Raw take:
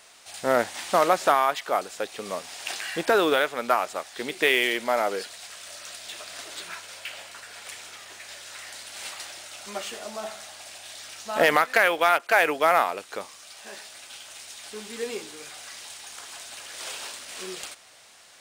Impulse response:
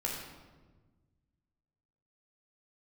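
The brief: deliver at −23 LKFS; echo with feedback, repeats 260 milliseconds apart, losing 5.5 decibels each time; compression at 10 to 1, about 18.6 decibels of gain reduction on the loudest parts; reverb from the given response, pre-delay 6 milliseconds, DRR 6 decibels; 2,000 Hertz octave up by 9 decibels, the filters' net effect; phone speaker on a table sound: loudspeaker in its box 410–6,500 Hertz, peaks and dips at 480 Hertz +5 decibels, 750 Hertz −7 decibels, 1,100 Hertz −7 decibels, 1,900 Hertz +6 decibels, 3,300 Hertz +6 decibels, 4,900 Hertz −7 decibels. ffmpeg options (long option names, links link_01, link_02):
-filter_complex "[0:a]equalizer=frequency=2000:width_type=o:gain=7,acompressor=threshold=-30dB:ratio=10,aecho=1:1:260|520|780|1040|1300|1560|1820:0.531|0.281|0.149|0.079|0.0419|0.0222|0.0118,asplit=2[link_01][link_02];[1:a]atrim=start_sample=2205,adelay=6[link_03];[link_02][link_03]afir=irnorm=-1:irlink=0,volume=-10dB[link_04];[link_01][link_04]amix=inputs=2:normalize=0,highpass=frequency=410:width=0.5412,highpass=frequency=410:width=1.3066,equalizer=frequency=480:width_type=q:width=4:gain=5,equalizer=frequency=750:width_type=q:width=4:gain=-7,equalizer=frequency=1100:width_type=q:width=4:gain=-7,equalizer=frequency=1900:width_type=q:width=4:gain=6,equalizer=frequency=3300:width_type=q:width=4:gain=6,equalizer=frequency=4900:width_type=q:width=4:gain=-7,lowpass=frequency=6500:width=0.5412,lowpass=frequency=6500:width=1.3066,volume=8.5dB"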